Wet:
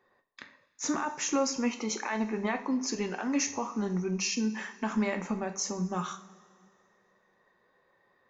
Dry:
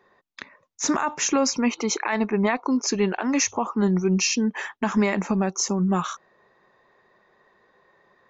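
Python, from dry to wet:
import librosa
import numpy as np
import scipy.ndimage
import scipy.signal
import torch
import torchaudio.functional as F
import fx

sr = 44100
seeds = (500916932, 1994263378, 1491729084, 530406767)

y = fx.rev_double_slope(x, sr, seeds[0], early_s=0.41, late_s=2.3, knee_db=-18, drr_db=5.0)
y = y * librosa.db_to_amplitude(-9.0)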